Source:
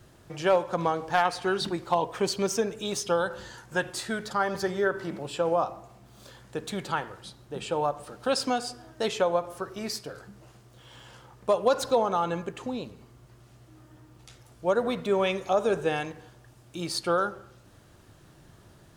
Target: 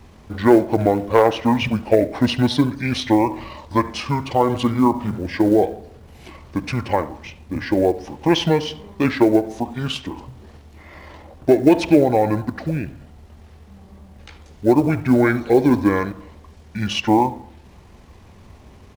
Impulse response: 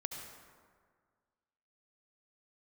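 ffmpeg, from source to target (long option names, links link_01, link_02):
-filter_complex "[0:a]asetrate=27781,aresample=44100,atempo=1.5874,asplit=2[link_01][link_02];[1:a]atrim=start_sample=2205,atrim=end_sample=3528,lowpass=3500[link_03];[link_02][link_03]afir=irnorm=-1:irlink=0,volume=-2dB[link_04];[link_01][link_04]amix=inputs=2:normalize=0,acrusher=bits=8:mode=log:mix=0:aa=0.000001,volume=6dB"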